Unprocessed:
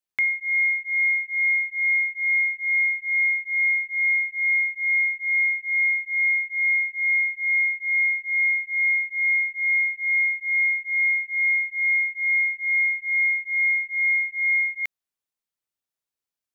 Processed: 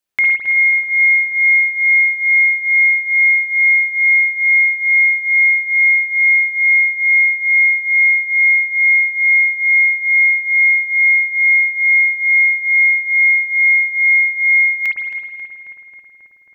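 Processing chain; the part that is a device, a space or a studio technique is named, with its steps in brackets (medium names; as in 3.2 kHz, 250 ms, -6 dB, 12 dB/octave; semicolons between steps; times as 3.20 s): dub delay into a spring reverb (filtered feedback delay 270 ms, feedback 80%, low-pass 2.1 kHz, level -7.5 dB; spring tank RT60 1.3 s, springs 52 ms, chirp 25 ms, DRR -2 dB); trim +7.5 dB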